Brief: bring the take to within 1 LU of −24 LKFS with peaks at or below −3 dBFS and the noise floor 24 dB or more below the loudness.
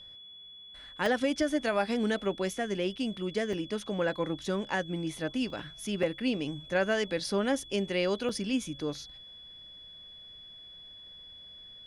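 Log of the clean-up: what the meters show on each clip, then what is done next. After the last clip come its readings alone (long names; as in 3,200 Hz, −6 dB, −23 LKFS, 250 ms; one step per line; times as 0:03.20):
number of dropouts 5; longest dropout 2.3 ms; interfering tone 3,400 Hz; level of the tone −47 dBFS; integrated loudness −31.5 LKFS; sample peak −16.5 dBFS; target loudness −24.0 LKFS
→ repair the gap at 0:01.06/0:03.53/0:05.50/0:06.03/0:08.29, 2.3 ms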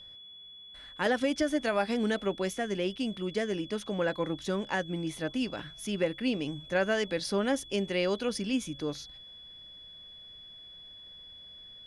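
number of dropouts 0; interfering tone 3,400 Hz; level of the tone −47 dBFS
→ notch filter 3,400 Hz, Q 30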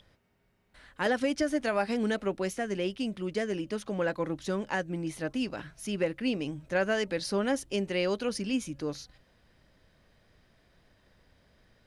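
interfering tone none found; integrated loudness −31.5 LKFS; sample peak −16.5 dBFS; target loudness −24.0 LKFS
→ level +7.5 dB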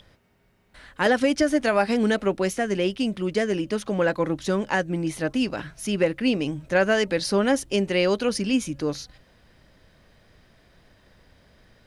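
integrated loudness −24.0 LKFS; sample peak −9.0 dBFS; background noise floor −60 dBFS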